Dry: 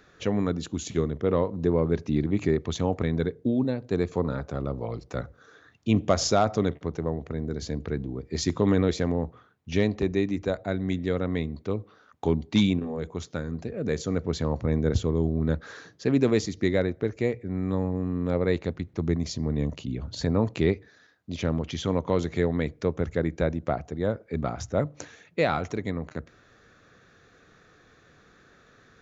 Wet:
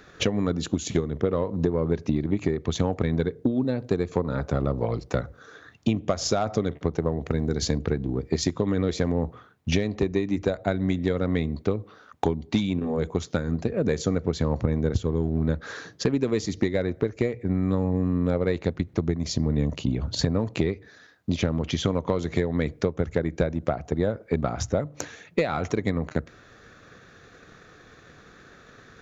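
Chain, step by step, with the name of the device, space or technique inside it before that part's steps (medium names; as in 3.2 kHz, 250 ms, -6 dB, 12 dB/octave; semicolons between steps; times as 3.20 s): 7.26–7.78 s: treble shelf 2.3 kHz +6 dB; drum-bus smash (transient shaper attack +8 dB, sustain 0 dB; compression 16:1, threshold -24 dBFS, peak gain reduction 15.5 dB; saturation -16 dBFS, distortion -20 dB); trim +6 dB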